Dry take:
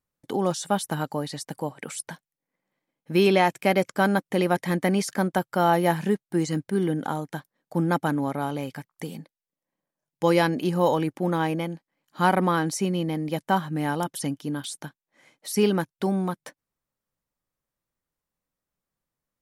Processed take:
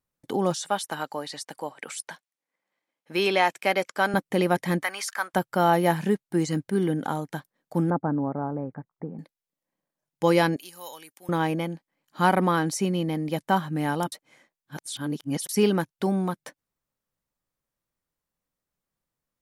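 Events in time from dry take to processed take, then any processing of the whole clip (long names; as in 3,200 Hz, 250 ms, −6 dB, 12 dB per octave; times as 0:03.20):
0:00.56–0:04.14: meter weighting curve A
0:04.83–0:05.34: high-pass with resonance 1,200 Hz, resonance Q 1.8
0:07.90–0:09.19: Bessel low-pass filter 900 Hz, order 8
0:10.56–0:11.29: first difference
0:14.12–0:15.49: reverse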